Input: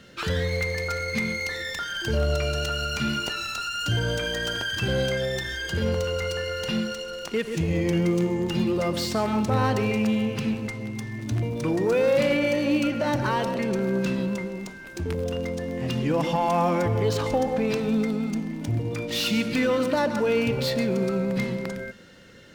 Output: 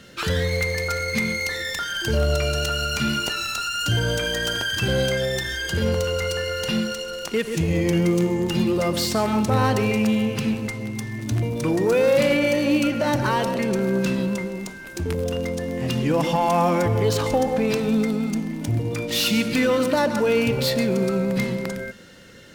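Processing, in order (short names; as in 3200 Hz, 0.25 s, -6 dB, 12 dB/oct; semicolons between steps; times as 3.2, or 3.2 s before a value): bell 12000 Hz +6.5 dB 1.4 oct; gain +3 dB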